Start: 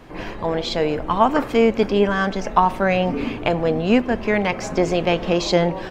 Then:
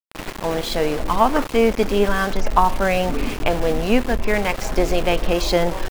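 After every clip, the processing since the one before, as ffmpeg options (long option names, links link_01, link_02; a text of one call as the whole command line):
ffmpeg -i in.wav -af "asubboost=boost=8.5:cutoff=52,aeval=exprs='val(0)*gte(abs(val(0)),0.0531)':channel_layout=same" out.wav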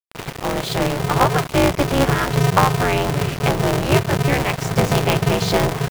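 ffmpeg -i in.wav -af "aeval=exprs='val(0)*sgn(sin(2*PI*140*n/s))':channel_layout=same" out.wav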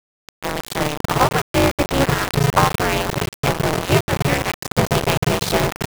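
ffmpeg -i in.wav -af "aeval=exprs='val(0)*gte(abs(val(0)),0.141)':channel_layout=same" out.wav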